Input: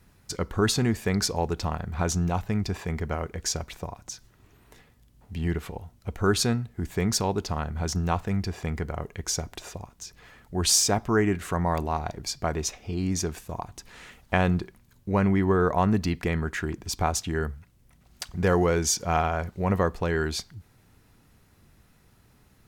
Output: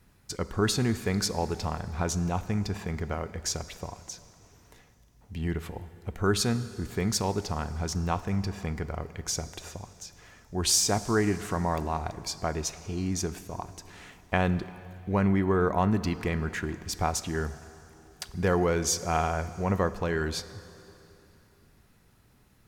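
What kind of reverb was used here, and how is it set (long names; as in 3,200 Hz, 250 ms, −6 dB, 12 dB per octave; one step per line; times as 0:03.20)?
dense smooth reverb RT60 3.1 s, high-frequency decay 0.9×, DRR 13.5 dB
level −2.5 dB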